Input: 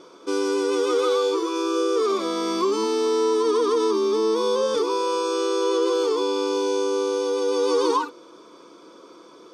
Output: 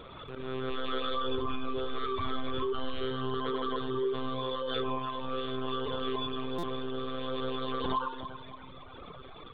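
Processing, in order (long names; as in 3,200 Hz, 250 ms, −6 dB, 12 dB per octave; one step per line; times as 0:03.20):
one-pitch LPC vocoder at 8 kHz 130 Hz
volume swells 664 ms
tilt shelving filter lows −5 dB
convolution reverb RT60 0.45 s, pre-delay 54 ms, DRR 5.5 dB
downward compressor 4 to 1, threshold −31 dBFS, peak gain reduction 12.5 dB
0:00.70–0:03.11: low shelf with overshoot 110 Hz +6 dB, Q 3
echo with a time of its own for lows and highs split 360 Hz, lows 388 ms, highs 284 ms, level −6.5 dB
reverb reduction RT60 1.7 s
buffer that repeats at 0:06.58, samples 256, times 8
background raised ahead of every attack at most 32 dB per second
level +2 dB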